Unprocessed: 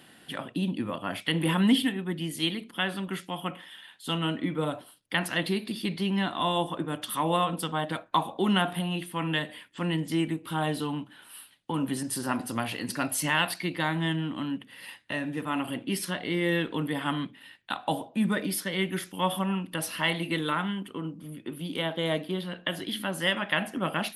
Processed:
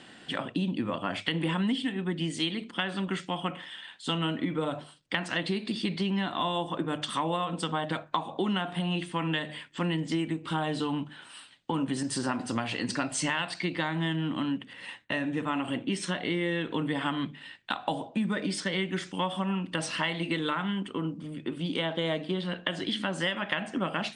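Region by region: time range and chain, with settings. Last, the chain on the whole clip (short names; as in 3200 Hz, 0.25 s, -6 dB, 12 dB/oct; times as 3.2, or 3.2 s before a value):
14.73–16.91 notch 4800 Hz, Q 6.5 + gate with hold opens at -38 dBFS, closes at -47 dBFS + mismatched tape noise reduction decoder only
whole clip: steep low-pass 8700 Hz 72 dB/oct; notches 50/100/150 Hz; compressor, threshold -30 dBFS; gain +4 dB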